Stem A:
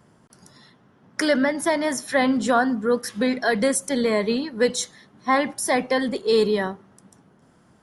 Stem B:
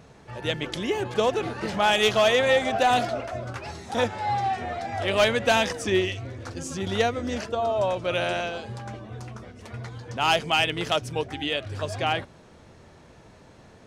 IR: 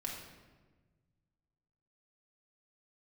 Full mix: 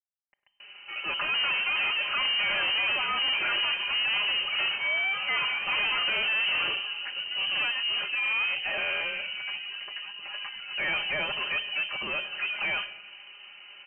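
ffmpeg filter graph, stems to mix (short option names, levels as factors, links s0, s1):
-filter_complex "[0:a]acrusher=bits=5:mix=0:aa=0.5,volume=1,asplit=2[s0][s1];[s1]volume=0.398[s2];[1:a]adelay=600,volume=1.12,asplit=2[s3][s4];[s4]volume=0.2[s5];[2:a]atrim=start_sample=2205[s6];[s2][s5]amix=inputs=2:normalize=0[s7];[s7][s6]afir=irnorm=-1:irlink=0[s8];[s0][s3][s8]amix=inputs=3:normalize=0,aecho=1:1:4.8:0.81,aeval=exprs='(tanh(20*val(0)+0.3)-tanh(0.3))/20':c=same,lowpass=f=2600:t=q:w=0.5098,lowpass=f=2600:t=q:w=0.6013,lowpass=f=2600:t=q:w=0.9,lowpass=f=2600:t=q:w=2.563,afreqshift=-3100"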